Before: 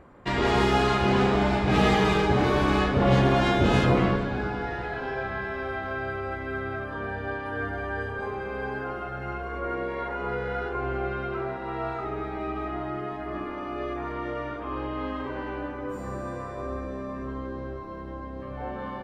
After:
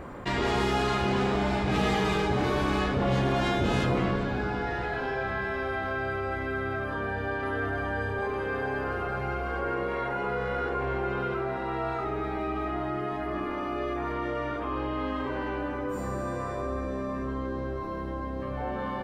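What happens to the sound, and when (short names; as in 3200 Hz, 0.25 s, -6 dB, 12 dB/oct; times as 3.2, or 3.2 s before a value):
6.52–11.34 echo 0.905 s -5.5 dB
whole clip: high shelf 6400 Hz +5.5 dB; fast leveller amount 50%; gain -6.5 dB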